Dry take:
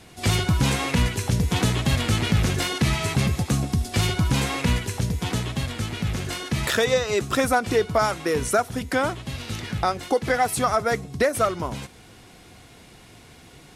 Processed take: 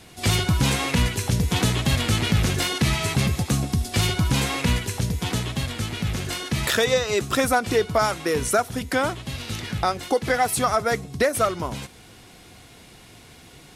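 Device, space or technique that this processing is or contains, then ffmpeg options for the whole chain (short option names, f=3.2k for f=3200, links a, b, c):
presence and air boost: -af "equalizer=f=3.7k:t=o:w=1.4:g=2,highshelf=f=11k:g=6"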